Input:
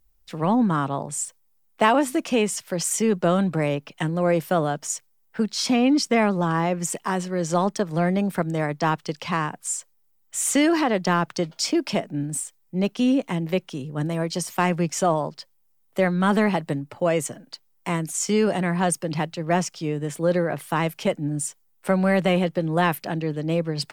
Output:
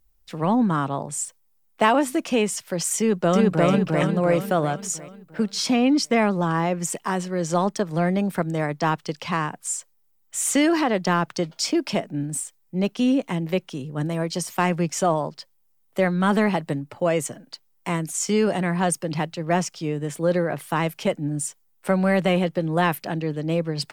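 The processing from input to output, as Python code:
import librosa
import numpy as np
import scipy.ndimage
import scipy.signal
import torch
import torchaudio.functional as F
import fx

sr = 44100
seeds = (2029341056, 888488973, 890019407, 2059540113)

y = fx.echo_throw(x, sr, start_s=2.98, length_s=0.7, ms=350, feedback_pct=50, wet_db=0.0)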